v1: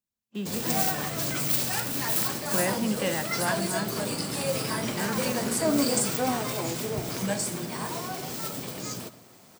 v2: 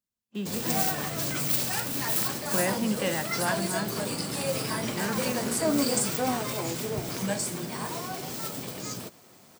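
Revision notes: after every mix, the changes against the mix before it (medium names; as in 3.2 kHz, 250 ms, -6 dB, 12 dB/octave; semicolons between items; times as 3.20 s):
reverb: off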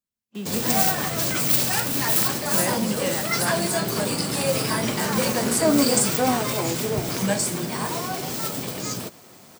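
background +6.5 dB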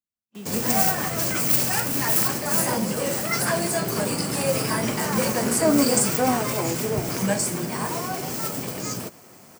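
speech -6.0 dB; background: add peaking EQ 3.7 kHz -7.5 dB 0.5 oct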